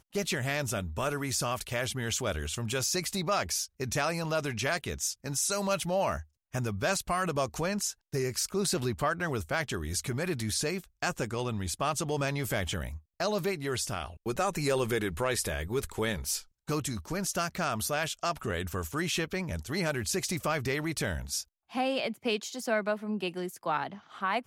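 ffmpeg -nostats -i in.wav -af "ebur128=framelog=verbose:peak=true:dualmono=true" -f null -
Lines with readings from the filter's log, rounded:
Integrated loudness:
  I:         -28.6 LUFS
  Threshold: -38.6 LUFS
Loudness range:
  LRA:         1.6 LU
  Threshold: -48.5 LUFS
  LRA low:   -29.3 LUFS
  LRA high:  -27.7 LUFS
True peak:
  Peak:      -16.2 dBFS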